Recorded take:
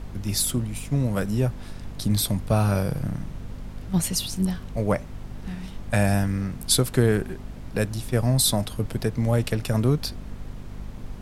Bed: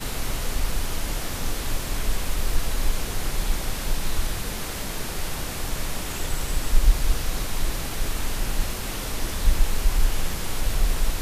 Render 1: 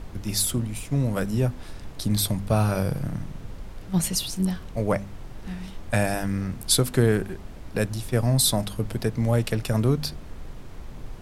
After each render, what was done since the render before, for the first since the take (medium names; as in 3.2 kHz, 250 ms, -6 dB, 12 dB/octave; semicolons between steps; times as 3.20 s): de-hum 50 Hz, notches 5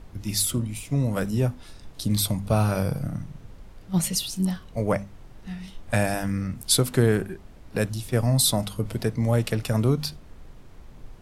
noise print and reduce 7 dB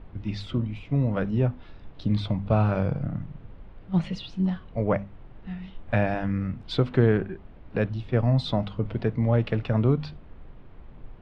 low-pass 3.1 kHz 24 dB/octave; peaking EQ 2.2 kHz -2.5 dB 1.4 oct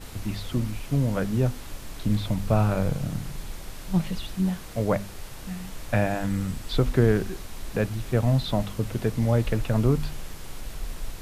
add bed -12 dB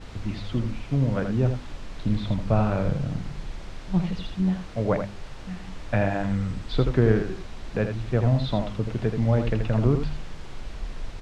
distance through air 120 m; on a send: delay 80 ms -7 dB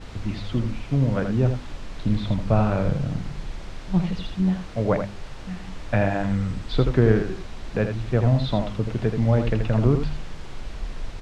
trim +2 dB